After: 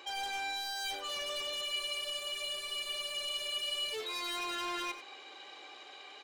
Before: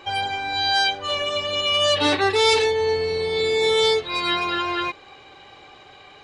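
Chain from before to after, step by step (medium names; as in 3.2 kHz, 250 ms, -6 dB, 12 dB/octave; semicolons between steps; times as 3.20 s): high-pass 280 Hz 24 dB/octave; treble shelf 2.6 kHz +8.5 dB; reverse; compression 6:1, threshold -24 dBFS, peak gain reduction 13.5 dB; reverse; overload inside the chain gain 28 dB; on a send: delay 94 ms -12 dB; on the sum: spectral freeze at 1.68 s, 2.26 s; trim -7.5 dB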